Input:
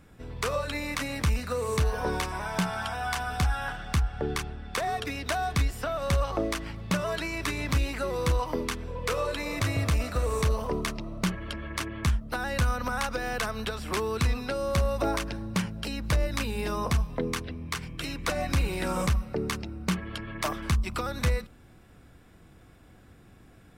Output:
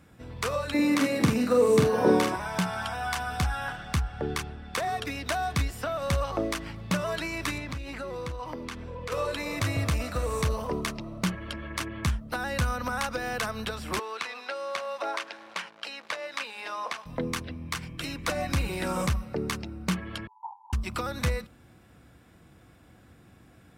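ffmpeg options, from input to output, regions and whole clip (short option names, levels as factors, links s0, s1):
-filter_complex "[0:a]asettb=1/sr,asplit=3[s0][s1][s2];[s0]atrim=end=0.744[s3];[s1]atrim=start=0.74:end=2.36,asetpts=PTS-STARTPTS,afade=t=in:d=0.004:c=qsin,afade=t=out:st=1.616:d=0.004:c=qsin,highpass=f=110:w=0.5412,highpass=f=110:w=1.3066,equalizer=f=310:t=o:w=2:g=12.5,asplit=2[s4][s5];[s5]adelay=45,volume=0.631[s6];[s4][s6]amix=inputs=2:normalize=0,atrim=end_sample=71442[s7];[s2]atrim=start=2.356[s8];[s3][s7]acrossfade=d=0.004:c1=hsin:c2=qsin[s9];[s9][s8]acrossfade=d=0.004:c1=qsin:c2=hsin,asettb=1/sr,asplit=3[s10][s11][s12];[s10]atrim=end=7.584[s13];[s11]atrim=start=7.58:end=9.12,asetpts=PTS-STARTPTS,afade=t=in:d=0.004:c=qsin,afade=t=out:st=1.536:d=0.004:c=qsin,highshelf=f=7600:g=-10.5,acompressor=threshold=0.0251:ratio=4:attack=3.2:release=140:knee=1:detection=peak[s14];[s12]atrim=start=9.116[s15];[s13][s14]acrossfade=d=0.004:c1=hsin:c2=qsin[s16];[s16][s15]acrossfade=d=0.004:c1=qsin:c2=hsin,asettb=1/sr,asplit=3[s17][s18][s19];[s17]atrim=end=13.994[s20];[s18]atrim=start=13.99:end=17.06,asetpts=PTS-STARTPTS,afade=t=in:d=0.004:c=qsin,afade=t=out:st=3.066:d=0.004:c=qsin,aemphasis=mode=production:type=bsi,acrusher=bits=8:dc=4:mix=0:aa=0.000001,highpass=590,lowpass=3100[s21];[s19]atrim=start=17.056[s22];[s20][s21]acrossfade=d=0.004:c1=hsin:c2=qsin[s23];[s23][s22]acrossfade=d=0.004:c1=qsin:c2=hsin,asettb=1/sr,asplit=3[s24][s25][s26];[s24]atrim=end=20.274[s27];[s25]atrim=start=20.27:end=20.73,asetpts=PTS-STARTPTS,afade=t=in:d=0.004:c=qsin,afade=t=out:st=0.456:d=0.004:c=qsin,asuperpass=centerf=880:order=8:qfactor=5,aecho=1:1:1.1:0.45,atrim=end_sample=20286[s28];[s26]atrim=start=20.726[s29];[s27][s28]acrossfade=d=0.004:c1=hsin:c2=qsin[s30];[s30][s29]acrossfade=d=0.004:c1=qsin:c2=hsin,highpass=63,bandreject=f=410:w=12"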